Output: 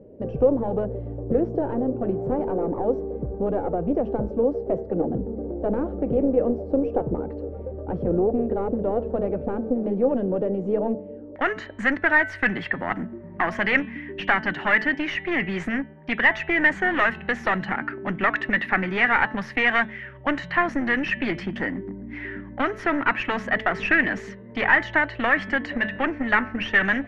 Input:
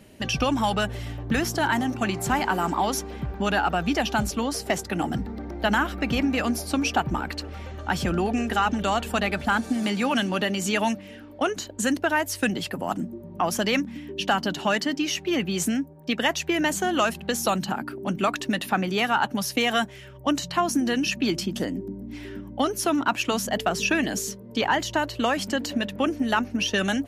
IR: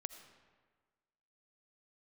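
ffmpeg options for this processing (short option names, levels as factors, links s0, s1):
-af "bandreject=f=217.8:t=h:w=4,bandreject=f=435.6:t=h:w=4,bandreject=f=653.4:t=h:w=4,bandreject=f=871.2:t=h:w=4,bandreject=f=1089:t=h:w=4,bandreject=f=1306.8:t=h:w=4,bandreject=f=1524.6:t=h:w=4,bandreject=f=1742.4:t=h:w=4,bandreject=f=1960.2:t=h:w=4,bandreject=f=2178:t=h:w=4,bandreject=f=2395.8:t=h:w=4,bandreject=f=2613.6:t=h:w=4,bandreject=f=2831.4:t=h:w=4,bandreject=f=3049.2:t=h:w=4,bandreject=f=3267:t=h:w=4,bandreject=f=3484.8:t=h:w=4,bandreject=f=3702.6:t=h:w=4,bandreject=f=3920.4:t=h:w=4,bandreject=f=4138.2:t=h:w=4,aeval=exprs='clip(val(0),-1,0.0447)':c=same,asetnsamples=n=441:p=0,asendcmd='11.36 lowpass f 1900',lowpass=f=490:t=q:w=5.6"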